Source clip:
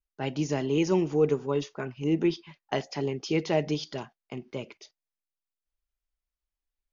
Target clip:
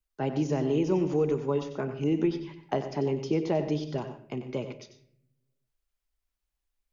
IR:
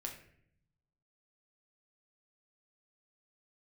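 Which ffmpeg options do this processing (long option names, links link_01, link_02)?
-filter_complex "[0:a]acrossover=split=120|1100[link_01][link_02][link_03];[link_01]acompressor=threshold=-48dB:ratio=4[link_04];[link_02]acompressor=threshold=-27dB:ratio=4[link_05];[link_03]acompressor=threshold=-51dB:ratio=4[link_06];[link_04][link_05][link_06]amix=inputs=3:normalize=0,asplit=2[link_07][link_08];[1:a]atrim=start_sample=2205,adelay=93[link_09];[link_08][link_09]afir=irnorm=-1:irlink=0,volume=-7dB[link_10];[link_07][link_10]amix=inputs=2:normalize=0,volume=3.5dB"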